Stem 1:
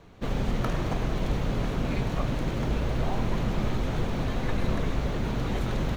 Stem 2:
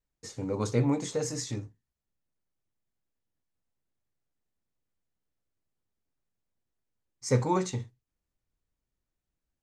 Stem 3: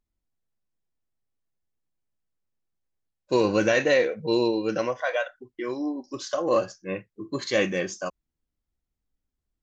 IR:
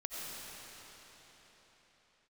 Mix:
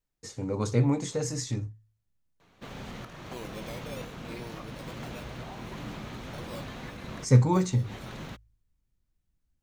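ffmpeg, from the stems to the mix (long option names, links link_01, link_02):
-filter_complex "[0:a]highpass=frequency=700:poles=1,alimiter=level_in=3dB:limit=-24dB:level=0:latency=1:release=372,volume=-3dB,adelay=2400,volume=-4dB[link_01];[1:a]volume=0.5dB,asplit=2[link_02][link_03];[2:a]lowpass=frequency=1100:width=0.5412,lowpass=frequency=1100:width=1.3066,lowshelf=frequency=430:gain=-10,acrusher=samples=12:mix=1:aa=0.000001:lfo=1:lforange=7.2:lforate=0.6,volume=-16dB[link_04];[link_03]apad=whole_len=369047[link_05];[link_01][link_05]sidechaincompress=threshold=-44dB:ratio=8:attack=11:release=126[link_06];[link_06][link_02][link_04]amix=inputs=3:normalize=0,bandreject=frequency=54.08:width_type=h:width=4,bandreject=frequency=108.16:width_type=h:width=4,asubboost=boost=3:cutoff=240"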